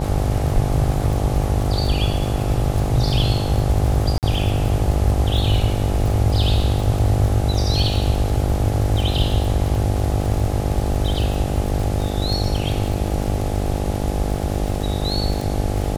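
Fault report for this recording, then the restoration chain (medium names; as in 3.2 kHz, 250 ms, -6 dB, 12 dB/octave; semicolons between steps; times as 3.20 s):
buzz 50 Hz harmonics 17 -24 dBFS
crackle 42 per s -24 dBFS
4.18–4.23 s: dropout 48 ms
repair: de-click; de-hum 50 Hz, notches 17; interpolate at 4.18 s, 48 ms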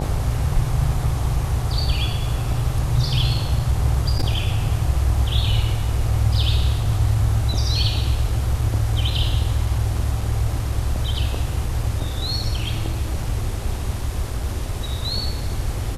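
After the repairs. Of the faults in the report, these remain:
nothing left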